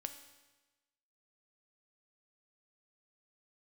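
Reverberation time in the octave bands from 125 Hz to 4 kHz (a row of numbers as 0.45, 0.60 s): 1.2, 1.2, 1.2, 1.2, 1.1, 1.1 s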